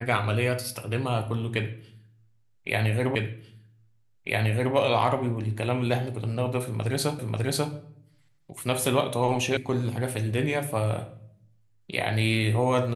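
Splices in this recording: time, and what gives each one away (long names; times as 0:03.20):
0:03.15: the same again, the last 1.6 s
0:07.19: the same again, the last 0.54 s
0:09.57: cut off before it has died away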